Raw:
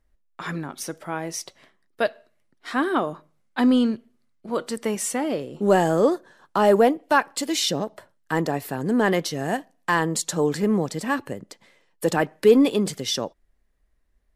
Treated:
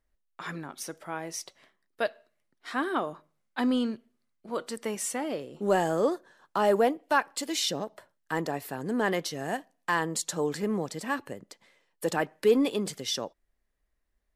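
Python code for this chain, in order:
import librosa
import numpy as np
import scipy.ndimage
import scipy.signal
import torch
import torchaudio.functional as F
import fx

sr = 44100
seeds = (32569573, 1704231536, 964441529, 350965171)

y = fx.low_shelf(x, sr, hz=310.0, db=-5.5)
y = y * librosa.db_to_amplitude(-5.0)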